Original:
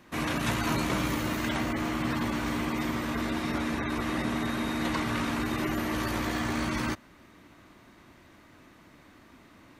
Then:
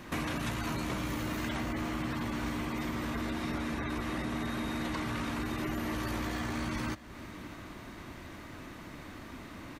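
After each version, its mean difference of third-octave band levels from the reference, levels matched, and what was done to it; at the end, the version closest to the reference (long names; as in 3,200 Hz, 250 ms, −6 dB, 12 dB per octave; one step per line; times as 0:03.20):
4.5 dB: low-shelf EQ 97 Hz +6 dB
downward compressor 6 to 1, threshold −40 dBFS, peak gain reduction 16 dB
soft clipping −31.5 dBFS, distortion −25 dB
single-tap delay 614 ms −18.5 dB
level +8 dB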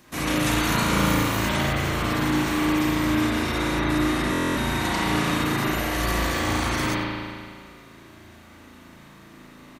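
3.5 dB: bass and treble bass +1 dB, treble +10 dB
on a send: single-tap delay 93 ms −16.5 dB
on the sum: spring reverb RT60 2 s, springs 36 ms, chirp 20 ms, DRR −5.5 dB
buffer that repeats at 0:04.31, samples 1,024, times 10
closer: second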